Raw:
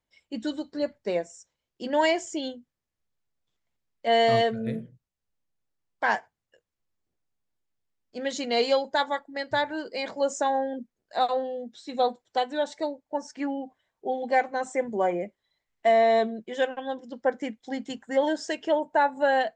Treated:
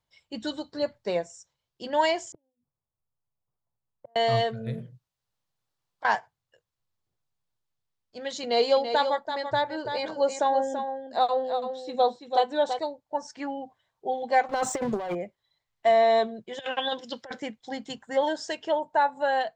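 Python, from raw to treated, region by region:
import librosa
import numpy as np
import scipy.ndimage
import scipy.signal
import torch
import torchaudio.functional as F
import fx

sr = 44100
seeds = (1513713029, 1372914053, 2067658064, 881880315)

y = fx.chain(x, sr, fx.lowpass(hz=1200.0, slope=24),
    fx.gate_flip(shuts_db=-30.0, range_db=-39), at=(2.32, 4.16))
y = fx.chain(y, sr, fx.low_shelf(hz=130.0, db=-8.0),
    fx.over_compress(threshold_db=-36.0, ratio=-1.0), at=(4.77, 6.05))
y = fx.chain(y, sr, fx.peak_eq(hz=380.0, db=7.0, octaves=2.0),
    fx.echo_single(ms=334, db=-8.0), at=(8.43, 12.79))
y = fx.chain(y, sr, fx.leveller(passes=2),
    fx.over_compress(threshold_db=-25.0, ratio=-0.5), at=(14.49, 15.15))
y = fx.chain(y, sr, fx.weighting(curve='D'),
    fx.over_compress(threshold_db=-30.0, ratio=-0.5), at=(16.59, 17.4))
y = fx.peak_eq(y, sr, hz=2100.0, db=-2.0, octaves=0.77)
y = fx.rider(y, sr, range_db=4, speed_s=2.0)
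y = fx.graphic_eq_10(y, sr, hz=(125, 250, 1000, 4000), db=(9, -6, 5, 5))
y = y * 10.0 ** (-4.0 / 20.0)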